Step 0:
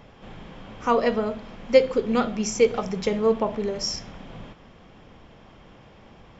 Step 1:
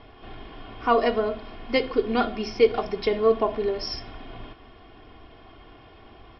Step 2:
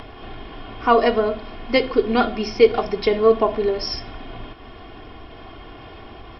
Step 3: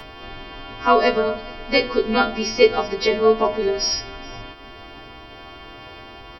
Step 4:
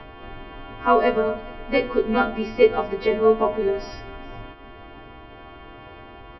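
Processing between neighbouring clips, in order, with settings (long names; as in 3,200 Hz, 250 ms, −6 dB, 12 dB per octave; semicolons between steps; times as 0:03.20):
Chebyshev low-pass filter 5,300 Hz, order 8; comb filter 2.8 ms, depth 74%
upward compression, threshold −37 dBFS; level +5 dB
every partial snapped to a pitch grid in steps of 2 semitones; single-tap delay 418 ms −24 dB
high-frequency loss of the air 470 metres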